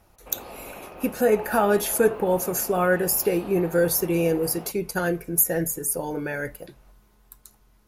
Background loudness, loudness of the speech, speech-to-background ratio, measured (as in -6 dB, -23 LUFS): -40.5 LUFS, -23.5 LUFS, 17.0 dB